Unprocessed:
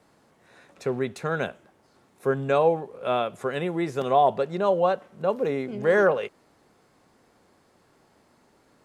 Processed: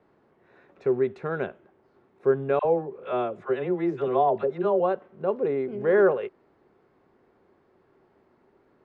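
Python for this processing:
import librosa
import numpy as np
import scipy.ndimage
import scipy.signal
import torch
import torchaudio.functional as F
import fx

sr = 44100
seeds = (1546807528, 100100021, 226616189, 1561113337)

y = scipy.signal.sosfilt(scipy.signal.butter(2, 2200.0, 'lowpass', fs=sr, output='sos'), x)
y = fx.peak_eq(y, sr, hz=380.0, db=10.0, octaves=0.32)
y = fx.dispersion(y, sr, late='lows', ms=60.0, hz=810.0, at=(2.59, 4.8))
y = F.gain(torch.from_numpy(y), -3.5).numpy()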